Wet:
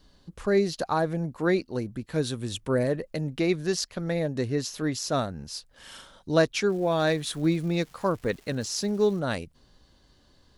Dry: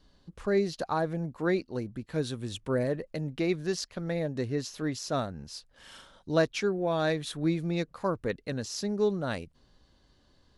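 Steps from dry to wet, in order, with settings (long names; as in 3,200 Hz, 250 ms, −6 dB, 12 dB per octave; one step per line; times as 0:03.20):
high-shelf EQ 6,900 Hz +6 dB
0:06.68–0:09.19: surface crackle 600 per second −47 dBFS
level +3.5 dB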